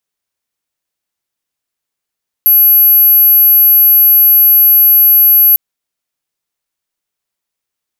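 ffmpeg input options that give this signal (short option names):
-f lavfi -i "aevalsrc='0.668*sin(2*PI*11700*t)':d=3.1:s=44100"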